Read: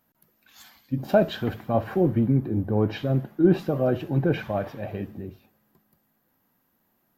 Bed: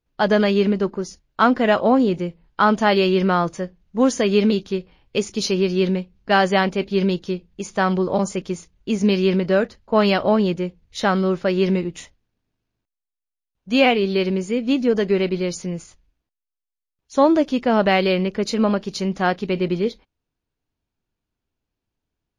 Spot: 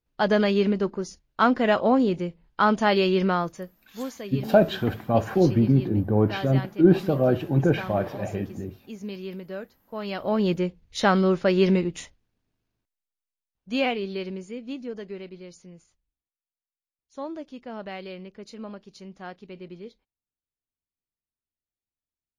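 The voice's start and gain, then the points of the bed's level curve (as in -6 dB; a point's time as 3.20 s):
3.40 s, +2.0 dB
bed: 3.26 s -4 dB
4.11 s -17.5 dB
9.99 s -17.5 dB
10.53 s -1 dB
12.67 s -1 dB
15.34 s -19.5 dB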